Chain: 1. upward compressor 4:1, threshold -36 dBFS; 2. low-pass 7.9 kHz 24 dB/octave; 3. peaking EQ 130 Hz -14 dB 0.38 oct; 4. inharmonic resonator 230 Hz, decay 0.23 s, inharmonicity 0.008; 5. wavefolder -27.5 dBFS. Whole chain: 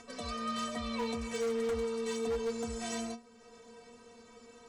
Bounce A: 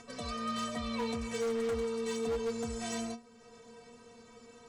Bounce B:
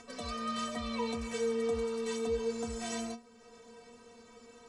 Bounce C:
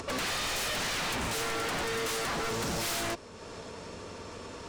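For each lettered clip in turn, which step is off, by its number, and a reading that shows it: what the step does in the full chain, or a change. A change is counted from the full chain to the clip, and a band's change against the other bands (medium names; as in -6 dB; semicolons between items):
3, 125 Hz band +2.0 dB; 5, distortion -17 dB; 4, 250 Hz band -10.5 dB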